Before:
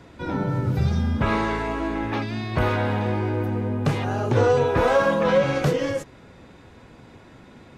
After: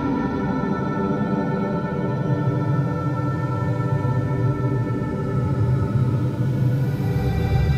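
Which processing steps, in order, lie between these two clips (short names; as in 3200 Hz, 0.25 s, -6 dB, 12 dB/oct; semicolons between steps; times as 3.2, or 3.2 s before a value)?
Paulstretch 17×, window 0.10 s, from 0.34; gain +2 dB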